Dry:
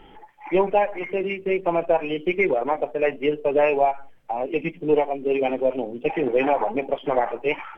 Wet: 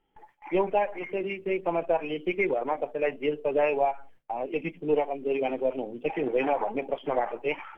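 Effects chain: gate with hold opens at -36 dBFS; trim -5.5 dB

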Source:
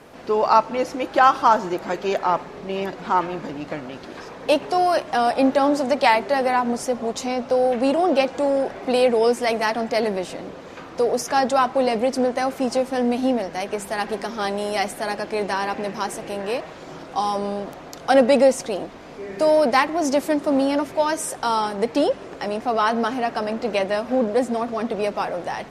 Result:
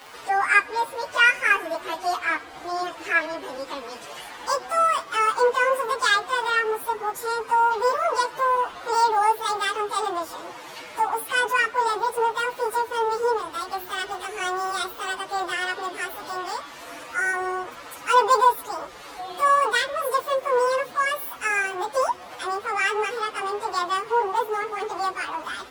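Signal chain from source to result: frequency-domain pitch shifter +10.5 st; tape noise reduction on one side only encoder only

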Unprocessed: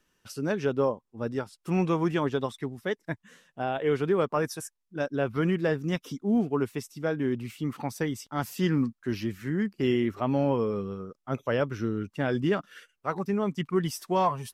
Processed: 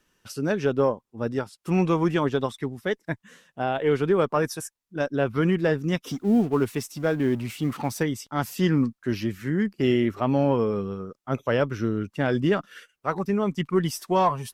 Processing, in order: 6.07–8.03 s: companding laws mixed up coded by mu; Chebyshev shaper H 4 -31 dB, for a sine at -14 dBFS; trim +3.5 dB

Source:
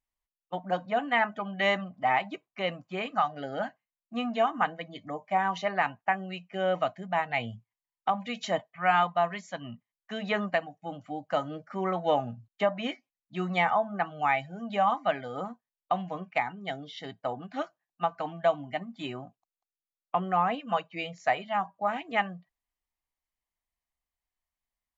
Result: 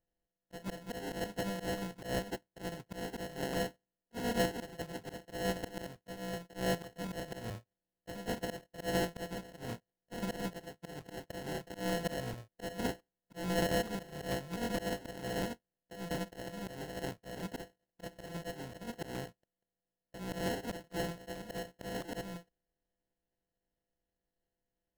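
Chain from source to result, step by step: sorted samples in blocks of 64 samples; compression 2.5:1, threshold -33 dBFS, peak gain reduction 9.5 dB; slow attack 163 ms; sample-and-hold 37×; crackling interface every 0.22 s, samples 256, repeat, from 0.45 s; trim +1.5 dB

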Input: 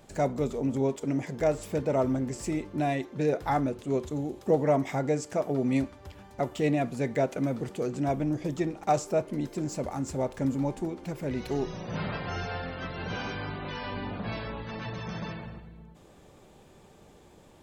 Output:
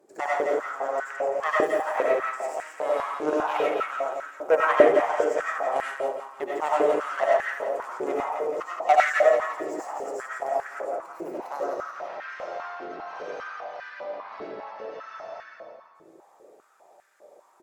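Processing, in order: peaking EQ 3.2 kHz -11.5 dB 1 oct; Chebyshev shaper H 3 -17 dB, 4 -19 dB, 5 -29 dB, 7 -16 dB, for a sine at -10.5 dBFS; on a send: feedback delay 169 ms, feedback 47%, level -5 dB; on the sum: algorithmic reverb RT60 0.52 s, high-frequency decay 0.35×, pre-delay 55 ms, DRR -4.5 dB; step-sequenced high-pass 5 Hz 370–1600 Hz

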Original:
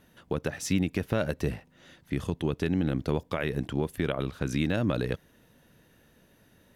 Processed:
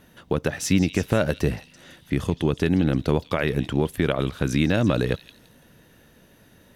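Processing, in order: repeats whose band climbs or falls 167 ms, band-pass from 3.9 kHz, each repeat 0.7 oct, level -8 dB; trim +6.5 dB

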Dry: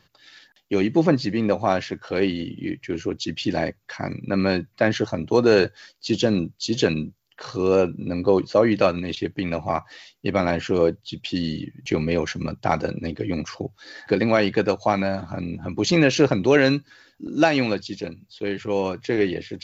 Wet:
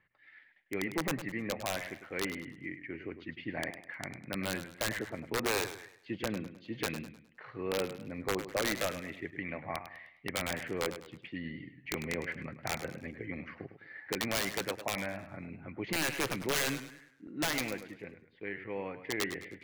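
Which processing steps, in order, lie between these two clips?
four-pole ladder low-pass 2.2 kHz, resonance 75%; integer overflow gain 19.5 dB; modulated delay 103 ms, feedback 37%, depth 106 cents, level -11 dB; trim -4 dB

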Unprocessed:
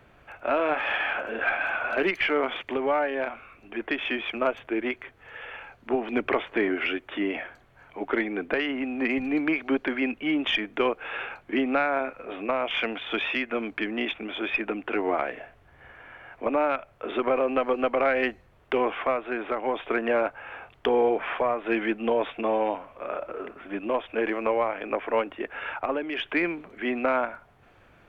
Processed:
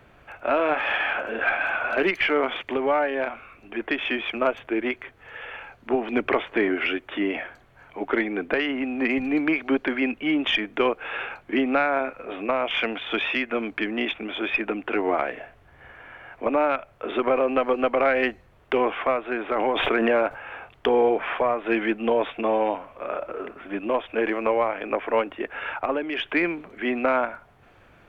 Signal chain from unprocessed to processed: 19.55–20.39 s: swell ahead of each attack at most 23 dB/s; trim +2.5 dB

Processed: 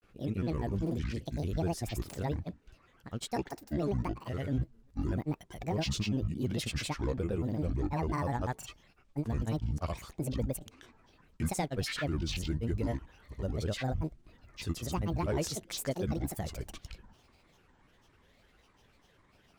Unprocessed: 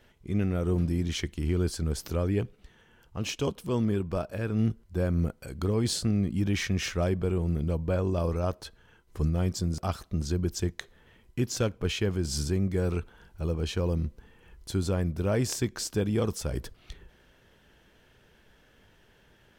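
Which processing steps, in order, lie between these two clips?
granulator, pitch spread up and down by 12 st; saturation -17.5 dBFS, distortion -22 dB; trim -3 dB

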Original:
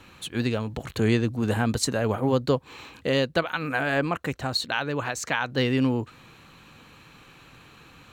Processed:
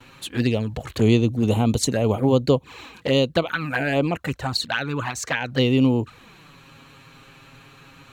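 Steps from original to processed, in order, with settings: gate with hold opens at -44 dBFS; touch-sensitive flanger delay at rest 8.7 ms, full sweep at -21 dBFS; trim +5.5 dB

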